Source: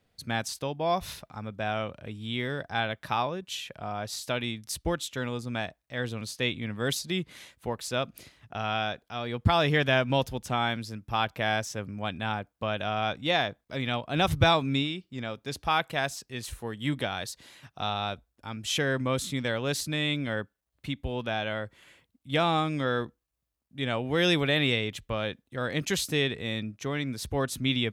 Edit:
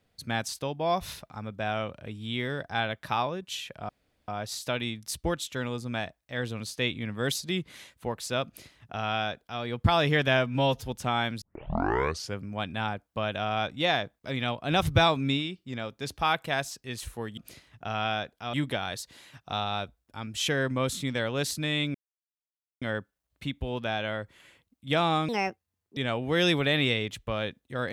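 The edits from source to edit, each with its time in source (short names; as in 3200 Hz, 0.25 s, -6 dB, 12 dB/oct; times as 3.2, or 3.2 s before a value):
3.89 insert room tone 0.39 s
8.07–9.23 copy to 16.83
9.98–10.29 stretch 1.5×
10.87 tape start 0.96 s
20.24 insert silence 0.87 s
22.71–23.79 speed 158%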